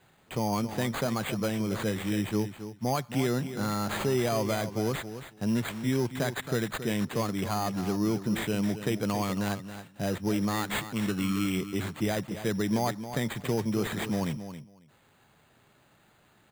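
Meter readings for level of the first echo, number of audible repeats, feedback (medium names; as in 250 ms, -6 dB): -11.0 dB, 2, 15%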